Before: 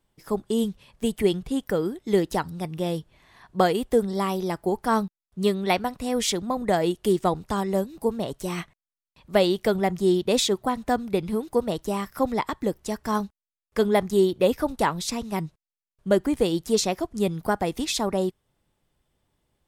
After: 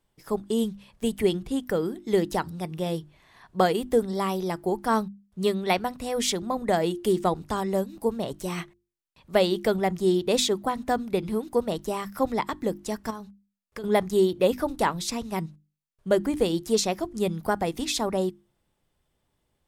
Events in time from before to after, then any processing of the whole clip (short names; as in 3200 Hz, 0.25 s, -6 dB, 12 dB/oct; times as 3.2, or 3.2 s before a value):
13.1–13.84 compressor 8:1, threshold -32 dBFS
whole clip: notches 50/100/150/200/250/300/350 Hz; gain -1 dB